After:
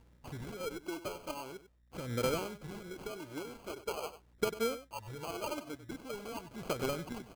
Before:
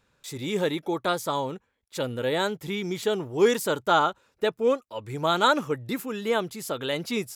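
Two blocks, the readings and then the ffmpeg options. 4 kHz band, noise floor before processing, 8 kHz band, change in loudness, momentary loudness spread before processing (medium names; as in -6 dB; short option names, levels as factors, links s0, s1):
-14.0 dB, -71 dBFS, -8.5 dB, -13.0 dB, 11 LU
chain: -filter_complex "[0:a]acrossover=split=4300[s0][s1];[s1]acompressor=threshold=0.00708:ratio=4:attack=1:release=60[s2];[s0][s2]amix=inputs=2:normalize=0,asubboost=boost=3:cutoff=94,acompressor=threshold=0.02:ratio=6,aeval=exprs='val(0)+0.000562*(sin(2*PI*60*n/s)+sin(2*PI*2*60*n/s)/2+sin(2*PI*3*60*n/s)/3+sin(2*PI*4*60*n/s)/4+sin(2*PI*5*60*n/s)/5)':c=same,aphaser=in_gain=1:out_gain=1:delay=3.5:decay=0.67:speed=0.44:type=sinusoidal,acrusher=samples=24:mix=1:aa=0.000001,aeval=exprs='0.133*(cos(1*acos(clip(val(0)/0.133,-1,1)))-cos(1*PI/2))+0.0168*(cos(3*acos(clip(val(0)/0.133,-1,1)))-cos(3*PI/2))':c=same,asplit=2[s3][s4];[s4]aecho=0:1:96:0.211[s5];[s3][s5]amix=inputs=2:normalize=0,volume=0.708"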